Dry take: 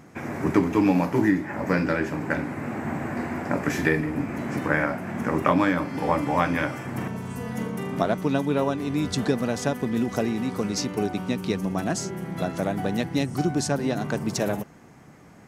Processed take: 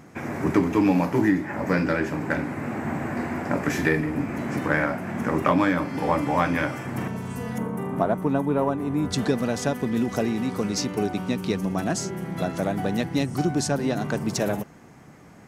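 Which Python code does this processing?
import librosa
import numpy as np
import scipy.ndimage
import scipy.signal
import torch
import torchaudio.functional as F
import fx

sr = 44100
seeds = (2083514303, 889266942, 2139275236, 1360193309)

p1 = fx.curve_eq(x, sr, hz=(580.0, 920.0, 4900.0, 9900.0), db=(0, 3, -16, -3), at=(7.58, 9.11))
p2 = 10.0 ** (-18.0 / 20.0) * np.tanh(p1 / 10.0 ** (-18.0 / 20.0))
p3 = p1 + (p2 * librosa.db_to_amplitude(-7.0))
y = p3 * librosa.db_to_amplitude(-2.0)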